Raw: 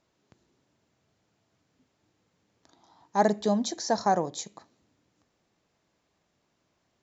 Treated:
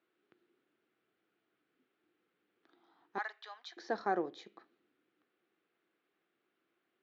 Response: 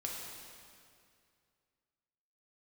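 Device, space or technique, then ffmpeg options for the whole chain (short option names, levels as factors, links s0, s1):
phone earpiece: -filter_complex "[0:a]asettb=1/sr,asplit=3[s0][s1][s2];[s0]atrim=end=3.184[s3];[s1]atrim=start=3.18:end=3.77,asetpts=PTS-STARTPTS,afade=t=in:d=0.004:c=qsin,afade=t=out:st=0.586:d=0.004:c=qsin,highpass=f=990:w=0.5412,highpass=f=990:w=1.3066[s4];[s2]atrim=start=3.766[s5];[s3][s4]acrossfade=d=0.004:c1=hsin:c2=qsin[s6];[s6][s5]acrossfade=d=0.004:c1=qsin:c2=hsin,highpass=350,equalizer=f=350:t=q:w=4:g=8,equalizer=f=610:t=q:w=4:g=-9,equalizer=f=940:t=q:w=4:g=-10,equalizer=f=1400:t=q:w=4:g=5,lowpass=f=3300:w=0.5412,lowpass=f=3300:w=1.3066,volume=0.562"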